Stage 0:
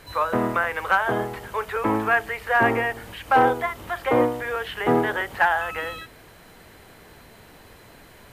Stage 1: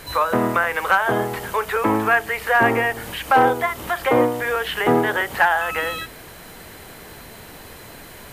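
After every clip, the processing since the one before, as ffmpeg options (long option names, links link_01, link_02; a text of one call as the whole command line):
ffmpeg -i in.wav -filter_complex "[0:a]highshelf=frequency=6100:gain=6.5,bandreject=frequency=50:width_type=h:width=6,bandreject=frequency=100:width_type=h:width=6,asplit=2[link_01][link_02];[link_02]acompressor=threshold=-28dB:ratio=6,volume=2.5dB[link_03];[link_01][link_03]amix=inputs=2:normalize=0" out.wav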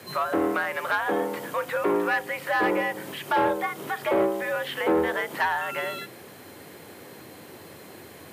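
ffmpeg -i in.wav -af "equalizer=frequency=280:width_type=o:width=1.2:gain=8,asoftclip=type=tanh:threshold=-9dB,afreqshift=80,volume=-7dB" out.wav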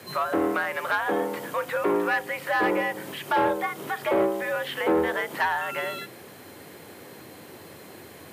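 ffmpeg -i in.wav -af anull out.wav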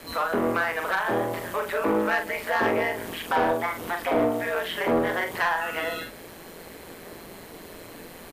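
ffmpeg -i in.wav -filter_complex "[0:a]aeval=exprs='val(0)*sin(2*PI*85*n/s)':channel_layout=same,asplit=2[link_01][link_02];[link_02]asoftclip=type=tanh:threshold=-29dB,volume=-4dB[link_03];[link_01][link_03]amix=inputs=2:normalize=0,asplit=2[link_04][link_05];[link_05]adelay=43,volume=-6.5dB[link_06];[link_04][link_06]amix=inputs=2:normalize=0" out.wav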